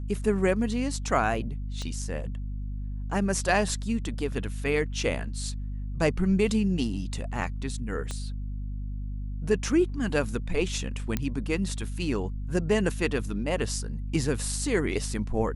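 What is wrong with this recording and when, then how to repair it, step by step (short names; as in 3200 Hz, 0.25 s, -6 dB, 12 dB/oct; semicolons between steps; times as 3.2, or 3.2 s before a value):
hum 50 Hz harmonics 5 -33 dBFS
1.82 pop -23 dBFS
8.11 pop -20 dBFS
11.17 pop -13 dBFS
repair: de-click; de-hum 50 Hz, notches 5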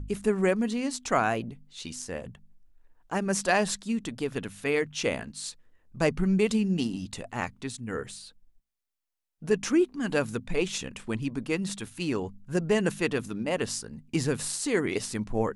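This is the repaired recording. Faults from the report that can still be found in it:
1.82 pop
8.11 pop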